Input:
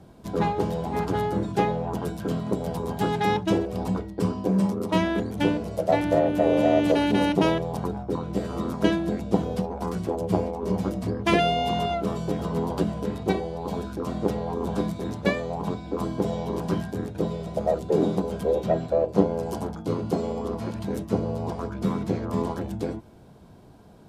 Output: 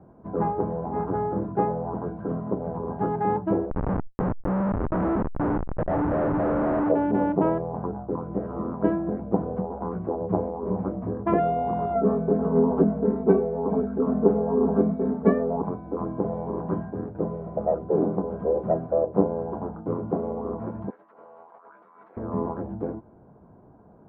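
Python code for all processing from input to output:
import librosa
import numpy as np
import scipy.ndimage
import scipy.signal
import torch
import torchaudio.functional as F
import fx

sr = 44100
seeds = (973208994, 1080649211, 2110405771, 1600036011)

y = fx.chain(x, sr, fx.schmitt(flips_db=-25.0),
    fx.env_flatten(amount_pct=100), at=(3.7, 6.89))
y = fx.chain(y, sr, fx.notch(hz=2500.0, q=23.0),
    fx.comb(ms=4.5, depth=0.93),
    fx.small_body(hz=(260.0, 390.0), ring_ms=45, db=7), at=(11.95, 15.62))
y = fx.chain(y, sr, fx.highpass(hz=1400.0, slope=12),
    fx.over_compress(threshold_db=-49.0, ratio=-1.0), at=(20.9, 22.17))
y = scipy.signal.sosfilt(scipy.signal.butter(4, 1300.0, 'lowpass', fs=sr, output='sos'), y)
y = fx.low_shelf(y, sr, hz=120.0, db=-6.5)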